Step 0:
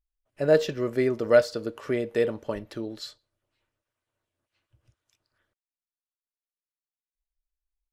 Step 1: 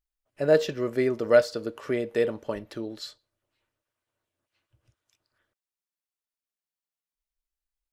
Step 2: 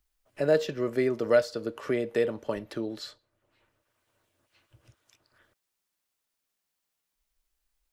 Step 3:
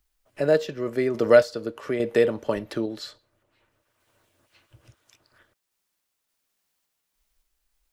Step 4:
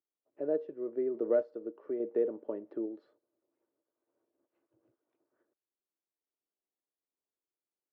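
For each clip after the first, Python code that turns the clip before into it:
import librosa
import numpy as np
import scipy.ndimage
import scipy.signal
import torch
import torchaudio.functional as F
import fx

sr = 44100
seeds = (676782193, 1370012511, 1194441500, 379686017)

y1 = fx.low_shelf(x, sr, hz=110.0, db=-5.0)
y2 = fx.band_squash(y1, sr, depth_pct=40)
y2 = F.gain(torch.from_numpy(y2), -1.5).numpy()
y3 = fx.tremolo_random(y2, sr, seeds[0], hz=3.5, depth_pct=55)
y3 = F.gain(torch.from_numpy(y3), 7.0).numpy()
y4 = fx.ladder_bandpass(y3, sr, hz=400.0, resonance_pct=45)
y4 = F.gain(torch.from_numpy(y4), -1.0).numpy()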